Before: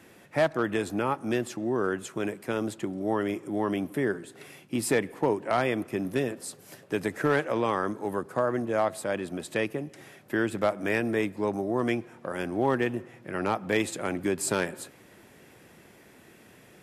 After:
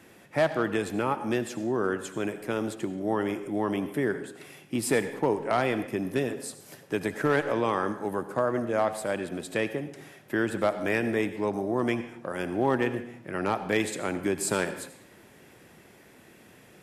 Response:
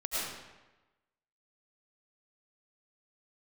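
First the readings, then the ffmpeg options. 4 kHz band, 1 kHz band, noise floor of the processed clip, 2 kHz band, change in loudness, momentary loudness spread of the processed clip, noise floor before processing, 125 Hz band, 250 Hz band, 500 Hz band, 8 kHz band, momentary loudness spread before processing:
+0.5 dB, +0.5 dB, -55 dBFS, +0.5 dB, 0.0 dB, 8 LU, -55 dBFS, 0.0 dB, 0.0 dB, +0.5 dB, 0.0 dB, 8 LU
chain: -filter_complex "[0:a]asplit=2[s0][s1];[1:a]atrim=start_sample=2205,afade=t=out:st=0.4:d=0.01,atrim=end_sample=18081,asetrate=57330,aresample=44100[s2];[s1][s2]afir=irnorm=-1:irlink=0,volume=0.211[s3];[s0][s3]amix=inputs=2:normalize=0,volume=0.891"

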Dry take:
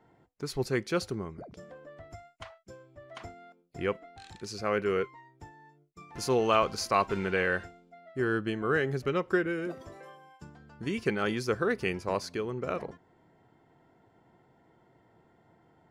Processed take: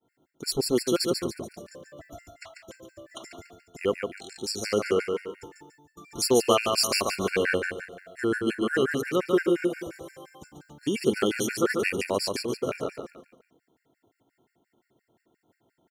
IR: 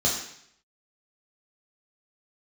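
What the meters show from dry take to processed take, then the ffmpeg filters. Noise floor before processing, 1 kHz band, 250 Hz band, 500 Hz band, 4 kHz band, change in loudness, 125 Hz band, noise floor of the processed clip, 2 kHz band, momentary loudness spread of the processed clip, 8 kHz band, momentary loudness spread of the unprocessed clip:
-65 dBFS, -0.5 dB, +5.0 dB, +4.0 dB, +10.0 dB, +4.0 dB, -1.5 dB, -79 dBFS, +2.0 dB, 22 LU, +12.0 dB, 21 LU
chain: -af "agate=range=0.0224:threshold=0.00178:ratio=3:detection=peak,firequalizer=gain_entry='entry(170,0);entry(250,8);entry(940,-3)':delay=0.05:min_phase=1,aecho=1:1:143|286|429|572|715:0.596|0.25|0.105|0.0441|0.0185,crystalizer=i=7.5:c=0,afftfilt=real='re*gt(sin(2*PI*5.7*pts/sr)*(1-2*mod(floor(b*sr/1024/1400),2)),0)':imag='im*gt(sin(2*PI*5.7*pts/sr)*(1-2*mod(floor(b*sr/1024/1400),2)),0)':win_size=1024:overlap=0.75"

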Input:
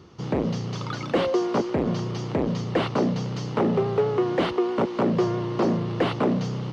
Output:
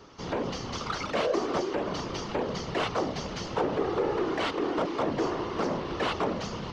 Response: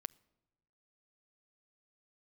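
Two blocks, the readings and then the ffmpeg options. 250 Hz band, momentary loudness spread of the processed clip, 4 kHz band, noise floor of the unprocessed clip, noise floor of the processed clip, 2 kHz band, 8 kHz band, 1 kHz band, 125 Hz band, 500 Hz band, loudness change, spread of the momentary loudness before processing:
-8.0 dB, 5 LU, 0.0 dB, -33 dBFS, -37 dBFS, -0.5 dB, no reading, -1.5 dB, -11.5 dB, -5.0 dB, -5.5 dB, 5 LU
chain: -filter_complex "[0:a]asplit=2[s0][s1];[s1]highpass=f=720:p=1,volume=6.31,asoftclip=type=tanh:threshold=0.211[s2];[s0][s2]amix=inputs=2:normalize=0,lowpass=f=2800:p=1,volume=0.501,acrossover=split=330|920[s3][s4][s5];[s3]alimiter=level_in=1.41:limit=0.0631:level=0:latency=1,volume=0.708[s6];[s6][s4][s5]amix=inputs=3:normalize=0,equalizer=f=6000:t=o:w=0.88:g=5.5,afftfilt=real='hypot(re,im)*cos(2*PI*random(0))':imag='hypot(re,im)*sin(2*PI*random(1))':win_size=512:overlap=0.75"

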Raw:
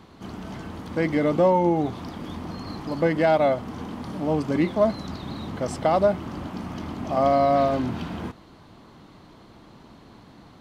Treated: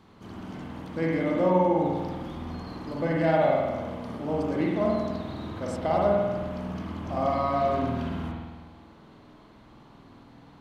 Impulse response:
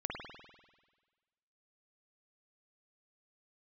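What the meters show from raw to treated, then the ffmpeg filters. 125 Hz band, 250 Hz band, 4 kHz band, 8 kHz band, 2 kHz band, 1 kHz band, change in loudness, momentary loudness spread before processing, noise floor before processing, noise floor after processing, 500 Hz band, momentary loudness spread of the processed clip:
-1.5 dB, -2.5 dB, -5.0 dB, no reading, -3.0 dB, -3.5 dB, -3.0 dB, 16 LU, -50 dBFS, -53 dBFS, -3.5 dB, 16 LU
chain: -filter_complex "[1:a]atrim=start_sample=2205[s0];[0:a][s0]afir=irnorm=-1:irlink=0,volume=0.531"

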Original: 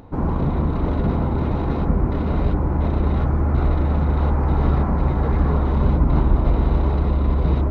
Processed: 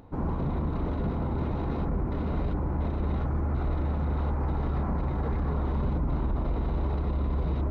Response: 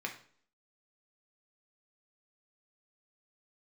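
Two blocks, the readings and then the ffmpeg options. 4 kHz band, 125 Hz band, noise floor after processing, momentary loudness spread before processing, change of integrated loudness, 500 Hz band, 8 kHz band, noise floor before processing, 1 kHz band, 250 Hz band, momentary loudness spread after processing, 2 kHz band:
-9.0 dB, -9.5 dB, -30 dBFS, 3 LU, -9.5 dB, -9.0 dB, no reading, -22 dBFS, -9.0 dB, -9.0 dB, 1 LU, -9.0 dB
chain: -af "alimiter=limit=0.211:level=0:latency=1:release=16,volume=0.422"

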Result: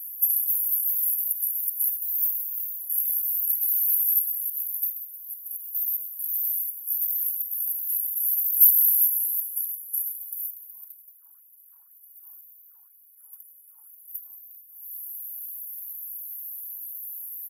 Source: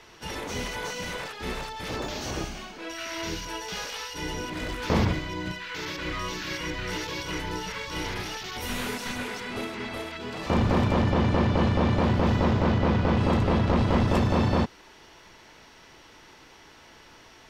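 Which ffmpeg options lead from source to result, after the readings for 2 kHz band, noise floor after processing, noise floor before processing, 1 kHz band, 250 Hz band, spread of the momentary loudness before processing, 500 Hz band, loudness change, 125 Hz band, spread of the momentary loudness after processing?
under -40 dB, -54 dBFS, -52 dBFS, under -40 dB, under -40 dB, 11 LU, under -40 dB, +4.5 dB, under -40 dB, 16 LU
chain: -filter_complex "[0:a]acompressor=threshold=0.0158:ratio=12,highshelf=f=5700:g=11,aecho=1:1:2.2:0.94,asubboost=boost=3:cutoff=120,afftfilt=real='re*(1-between(b*sr/4096,190,11000))':imag='im*(1-between(b*sr/4096,190,11000))':win_size=4096:overlap=0.75,acontrast=40,asplit=2[s0][s1];[s1]adelay=174,lowpass=f=4300:p=1,volume=0.501,asplit=2[s2][s3];[s3]adelay=174,lowpass=f=4300:p=1,volume=0.52,asplit=2[s4][s5];[s5]adelay=174,lowpass=f=4300:p=1,volume=0.52,asplit=2[s6][s7];[s7]adelay=174,lowpass=f=4300:p=1,volume=0.52,asplit=2[s8][s9];[s9]adelay=174,lowpass=f=4300:p=1,volume=0.52,asplit=2[s10][s11];[s11]adelay=174,lowpass=f=4300:p=1,volume=0.52[s12];[s2][s4][s6][s8][s10][s12]amix=inputs=6:normalize=0[s13];[s0][s13]amix=inputs=2:normalize=0,apsyclip=15.8,afftfilt=real='re*gte(b*sr/1024,830*pow(5100/830,0.5+0.5*sin(2*PI*2*pts/sr)))':imag='im*gte(b*sr/1024,830*pow(5100/830,0.5+0.5*sin(2*PI*2*pts/sr)))':win_size=1024:overlap=0.75,volume=0.891"

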